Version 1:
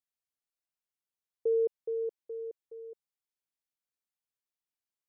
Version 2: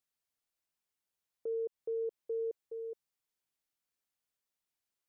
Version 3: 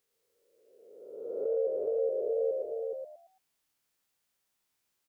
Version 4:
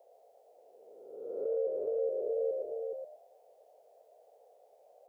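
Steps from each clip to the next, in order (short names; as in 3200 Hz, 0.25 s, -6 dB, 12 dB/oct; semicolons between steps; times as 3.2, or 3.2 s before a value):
compressor, threshold -33 dBFS, peak gain reduction 7.5 dB; limiter -35 dBFS, peak gain reduction 9.5 dB; gain +3.5 dB
spectral swells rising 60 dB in 1.44 s; on a send: frequency-shifting echo 0.112 s, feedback 32%, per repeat +76 Hz, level -3.5 dB; on the sum: gain +4.5 dB
band noise 450–740 Hz -59 dBFS; gain -2.5 dB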